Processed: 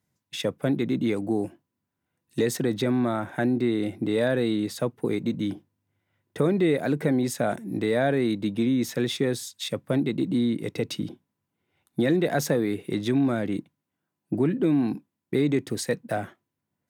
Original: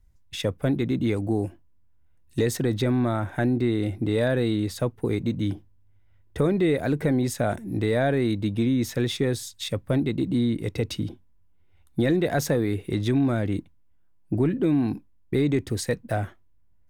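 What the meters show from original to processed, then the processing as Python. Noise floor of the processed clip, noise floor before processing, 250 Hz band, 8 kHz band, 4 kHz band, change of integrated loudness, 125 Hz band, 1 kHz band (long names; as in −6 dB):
−83 dBFS, −57 dBFS, 0.0 dB, 0.0 dB, 0.0 dB, −0.5 dB, −5.0 dB, 0.0 dB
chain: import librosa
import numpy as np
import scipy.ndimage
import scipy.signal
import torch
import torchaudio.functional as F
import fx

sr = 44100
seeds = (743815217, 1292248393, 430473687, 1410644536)

y = scipy.signal.sosfilt(scipy.signal.butter(4, 140.0, 'highpass', fs=sr, output='sos'), x)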